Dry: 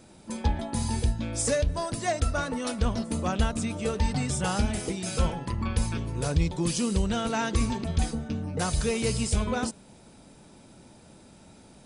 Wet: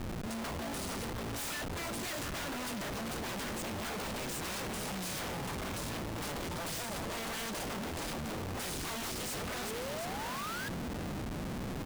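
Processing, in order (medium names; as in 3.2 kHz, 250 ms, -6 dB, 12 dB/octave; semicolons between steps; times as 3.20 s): in parallel at +3 dB: compression 16:1, threshold -36 dBFS, peak gain reduction 19.5 dB; on the sum: wavefolder -28.5 dBFS; feedback delay 709 ms, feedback 30%, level -6.5 dB; painted sound rise, 9.53–10.69 s, 340–1700 Hz -39 dBFS; Schmitt trigger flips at -41 dBFS; trim -4 dB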